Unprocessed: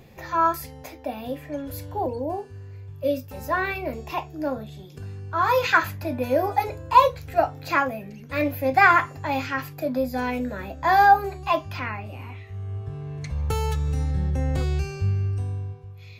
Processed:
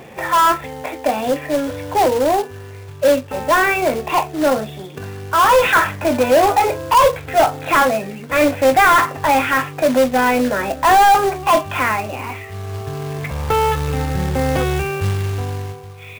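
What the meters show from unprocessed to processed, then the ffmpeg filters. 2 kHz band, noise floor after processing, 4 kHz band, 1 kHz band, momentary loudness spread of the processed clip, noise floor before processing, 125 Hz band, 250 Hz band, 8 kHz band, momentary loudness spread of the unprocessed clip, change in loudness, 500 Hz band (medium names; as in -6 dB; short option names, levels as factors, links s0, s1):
+6.5 dB, -35 dBFS, +11.5 dB, +7.0 dB, 15 LU, -43 dBFS, +3.0 dB, +8.5 dB, no reading, 17 LU, +8.0 dB, +10.5 dB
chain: -filter_complex "[0:a]asplit=2[s0][s1];[s1]highpass=f=720:p=1,volume=20,asoftclip=type=tanh:threshold=0.708[s2];[s0][s2]amix=inputs=2:normalize=0,lowpass=f=1400:p=1,volume=0.501,aresample=8000,aresample=44100,acrusher=bits=3:mode=log:mix=0:aa=0.000001"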